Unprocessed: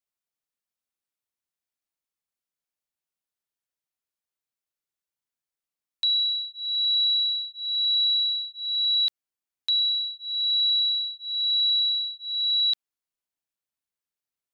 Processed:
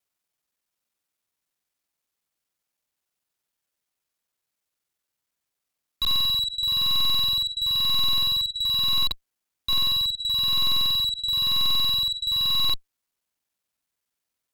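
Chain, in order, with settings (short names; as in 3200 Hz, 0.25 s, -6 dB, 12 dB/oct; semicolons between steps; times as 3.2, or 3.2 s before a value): local time reversal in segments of 47 ms; added harmonics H 2 -8 dB, 6 -34 dB, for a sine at -18.5 dBFS; slew limiter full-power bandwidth 120 Hz; gain +8 dB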